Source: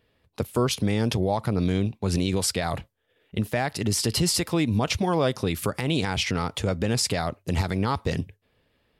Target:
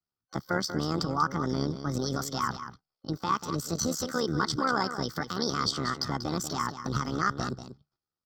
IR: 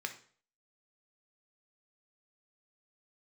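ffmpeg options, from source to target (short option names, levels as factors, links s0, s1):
-filter_complex "[0:a]aemphasis=mode=reproduction:type=50kf,agate=range=0.0794:threshold=0.00141:ratio=16:detection=peak,superequalizer=7b=0.501:9b=3.16:11b=0.282:13b=3.16:15b=0.398,tremolo=f=48:d=0.71,asetrate=58866,aresample=44100,atempo=0.749154,asplit=2[s0][s1];[s1]aecho=0:1:206:0.299[s2];[s0][s2]amix=inputs=2:normalize=0,asetrate=48000,aresample=44100,volume=0.708"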